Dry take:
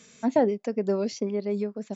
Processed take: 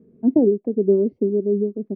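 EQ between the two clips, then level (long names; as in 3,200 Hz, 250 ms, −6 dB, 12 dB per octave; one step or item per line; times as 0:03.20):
low-pass with resonance 360 Hz, resonance Q 4
high-frequency loss of the air 150 metres
low-shelf EQ 210 Hz +7 dB
0.0 dB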